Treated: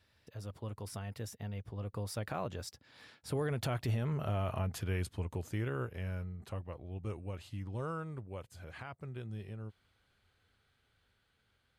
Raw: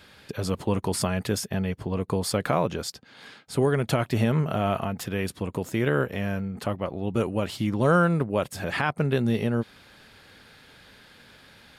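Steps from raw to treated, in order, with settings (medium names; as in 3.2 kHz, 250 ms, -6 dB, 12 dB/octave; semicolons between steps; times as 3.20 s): Doppler pass-by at 4.04 s, 26 m/s, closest 21 m; resonant low shelf 130 Hz +7.5 dB, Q 1.5; peak limiter -20.5 dBFS, peak gain reduction 10.5 dB; trim -6 dB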